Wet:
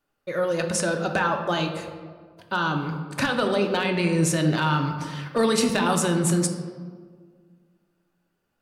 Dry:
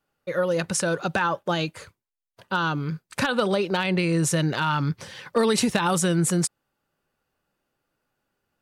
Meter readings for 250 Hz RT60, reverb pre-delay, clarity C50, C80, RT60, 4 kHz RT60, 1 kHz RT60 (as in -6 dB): 2.1 s, 3 ms, 7.0 dB, 8.0 dB, 1.7 s, 0.95 s, 1.5 s